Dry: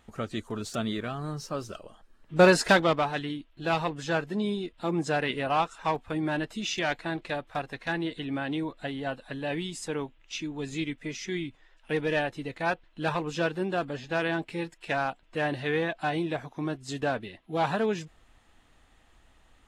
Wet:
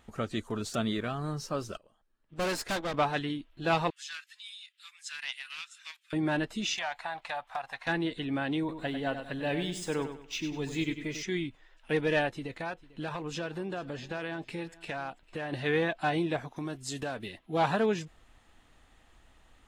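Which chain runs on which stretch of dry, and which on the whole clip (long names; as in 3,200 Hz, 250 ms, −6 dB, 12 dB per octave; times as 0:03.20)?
0:01.77–0:02.94: dynamic equaliser 140 Hz, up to −5 dB, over −39 dBFS, Q 1.5 + tube saturation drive 28 dB, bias 0.8 + expander for the loud parts, over −49 dBFS
0:03.90–0:06.13: Bessel high-pass filter 2,800 Hz, order 8 + highs frequency-modulated by the lows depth 0.15 ms
0:06.76–0:07.87: low shelf with overshoot 540 Hz −13.5 dB, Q 3 + downward compressor 4 to 1, threshold −31 dBFS
0:08.59–0:11.23: running median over 3 samples + repeating echo 98 ms, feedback 33%, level −9 dB
0:12.31–0:15.53: downward compressor 4 to 1, threshold −33 dBFS + single-tap delay 447 ms −20.5 dB
0:16.56–0:17.39: high-shelf EQ 5,400 Hz +11 dB + downward compressor 3 to 1, threshold −33 dBFS
whole clip: no processing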